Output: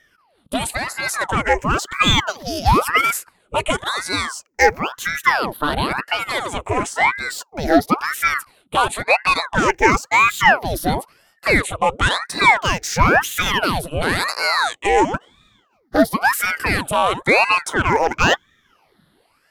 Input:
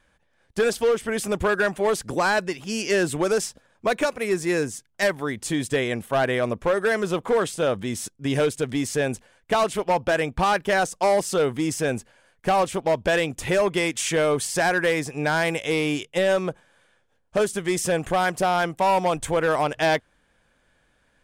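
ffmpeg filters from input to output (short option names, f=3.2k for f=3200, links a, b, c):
-af "afftfilt=real='re*pow(10,19/40*sin(2*PI*(0.62*log(max(b,1)*sr/1024/100)/log(2)-(-0.34)*(pts-256)/sr)))':imag='im*pow(10,19/40*sin(2*PI*(0.62*log(max(b,1)*sr/1024/100)/log(2)-(-0.34)*(pts-256)/sr)))':win_size=1024:overlap=0.75,asetrate=48000,aresample=44100,aeval=exprs='val(0)*sin(2*PI*1000*n/s+1000*0.85/0.97*sin(2*PI*0.97*n/s))':c=same,volume=3.5dB"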